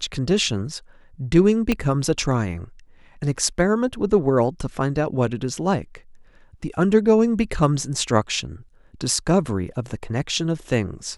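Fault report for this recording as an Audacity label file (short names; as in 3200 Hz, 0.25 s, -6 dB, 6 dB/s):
1.720000	1.720000	pop -8 dBFS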